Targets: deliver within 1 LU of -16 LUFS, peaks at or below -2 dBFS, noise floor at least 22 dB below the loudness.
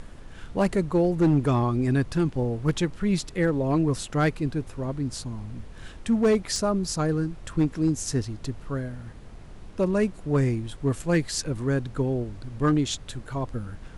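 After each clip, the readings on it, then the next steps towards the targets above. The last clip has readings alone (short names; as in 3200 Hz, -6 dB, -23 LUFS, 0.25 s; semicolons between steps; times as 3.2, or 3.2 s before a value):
clipped 0.8%; flat tops at -15.0 dBFS; noise floor -44 dBFS; noise floor target -48 dBFS; loudness -26.0 LUFS; peak -15.0 dBFS; loudness target -16.0 LUFS
-> clip repair -15 dBFS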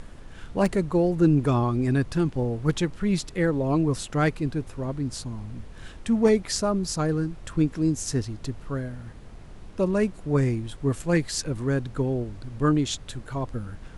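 clipped 0.0%; noise floor -44 dBFS; noise floor target -48 dBFS
-> noise print and reduce 6 dB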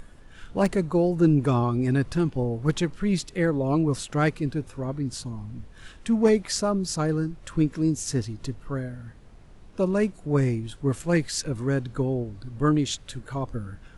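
noise floor -49 dBFS; loudness -25.5 LUFS; peak -8.0 dBFS; loudness target -16.0 LUFS
-> gain +9.5 dB; limiter -2 dBFS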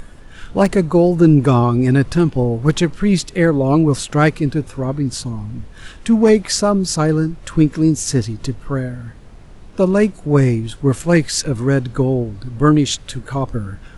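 loudness -16.5 LUFS; peak -2.0 dBFS; noise floor -39 dBFS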